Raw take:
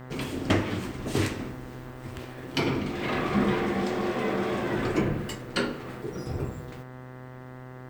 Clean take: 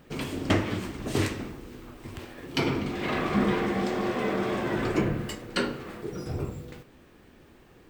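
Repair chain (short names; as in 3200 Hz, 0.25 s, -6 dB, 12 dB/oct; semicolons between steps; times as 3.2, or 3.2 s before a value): de-hum 127.6 Hz, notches 16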